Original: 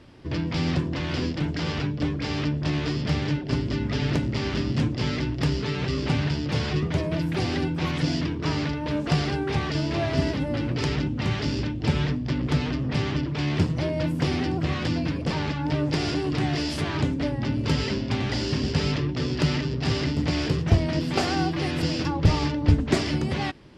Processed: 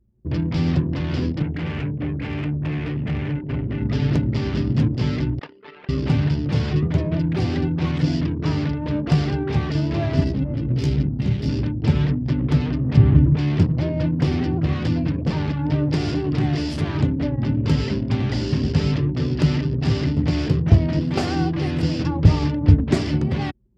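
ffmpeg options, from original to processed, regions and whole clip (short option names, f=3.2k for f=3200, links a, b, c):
-filter_complex "[0:a]asettb=1/sr,asplit=3[a][b][c];[a]atrim=end=1.424[d];[b]atrim=start=1.42:end=3.82,asetpts=PTS-STARTPTS,afade=t=in:d=0.004:c=qsin,afade=t=out:st=2.396:d=0.004:c=qsin,lowpass=f=2.4k:t=q:w=2,aeval=exprs='(tanh(15.8*val(0)+0.3)-tanh(0.3))/15.8':c=same[e];[c]atrim=start=3.816[f];[d][e]acrossfade=d=0.004:c1=hsin:c2=qsin[g];[g][f]acrossfade=d=0.004:c1=qsin:c2=hsin,asettb=1/sr,asplit=3[h][i][j];[h]atrim=end=5.394[k];[i]atrim=start=5.39:end=5.89,asetpts=PTS-STARTPTS,afade=t=in:d=0.004:c=qsin,afade=t=out:st=0.496:d=0.004:c=qsin,highpass=710,lowpass=4.1k,aemphasis=mode=reproduction:type=cd[l];[j]atrim=start=5.886[m];[k][l]acrossfade=d=0.004:c1=hsin:c2=qsin[n];[n][m]acrossfade=d=0.004:c1=qsin:c2=hsin,asettb=1/sr,asplit=3[o][p][q];[o]atrim=end=10.244[r];[p]atrim=start=10.24:end=11.49,asetpts=PTS-STARTPTS,afade=t=in:d=0.004:c=qsin,afade=t=out:st=1.246:d=0.004:c=qsin,equalizer=f=1.1k:t=o:w=2:g=-10,aeval=exprs='sgn(val(0))*max(abs(val(0))-0.00596,0)':c=same,asplit=2[s][t];[t]adelay=15,volume=-4dB[u];[s][u]amix=inputs=2:normalize=0,atrim=end_sample=55125[v];[q]atrim=start=11.486[w];[r][v]acrossfade=d=0.004:c1=hsin:c2=qsin[x];[x][w]acrossfade=d=0.004:c1=qsin:c2=hsin,asettb=1/sr,asplit=3[y][z][aa];[y]atrim=end=12.974[ab];[z]atrim=start=12.97:end=13.37,asetpts=PTS-STARTPTS,afade=t=in:d=0.004:c=qsin,afade=t=out:st=0.396:d=0.004:c=qsin,lowpass=f=3k:p=1,aemphasis=mode=reproduction:type=bsi[ac];[aa]atrim=start=13.366[ad];[ab][ac]acrossfade=d=0.004:c1=hsin:c2=qsin[ae];[ae][ad]acrossfade=d=0.004:c1=qsin:c2=hsin,anlmdn=10,highpass=63,lowshelf=f=310:g=10,volume=-2dB"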